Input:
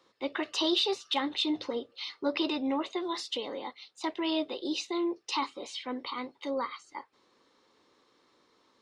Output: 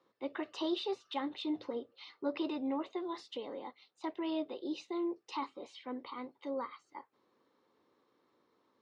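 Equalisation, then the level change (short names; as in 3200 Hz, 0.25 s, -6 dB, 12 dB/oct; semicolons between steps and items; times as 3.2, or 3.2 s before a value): HPF 84 Hz; high shelf 2100 Hz -11.5 dB; high shelf 7300 Hz -5 dB; -4.5 dB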